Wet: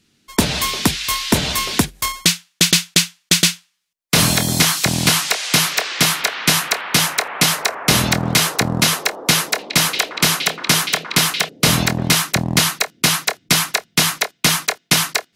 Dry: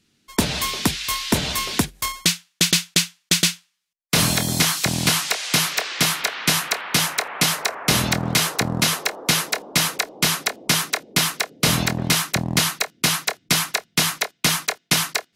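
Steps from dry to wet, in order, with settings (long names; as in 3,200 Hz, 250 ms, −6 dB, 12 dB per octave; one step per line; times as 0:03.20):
0:09.41–0:11.49: echo through a band-pass that steps 176 ms, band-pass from 3,100 Hz, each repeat −1.4 octaves, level −5 dB
level +4 dB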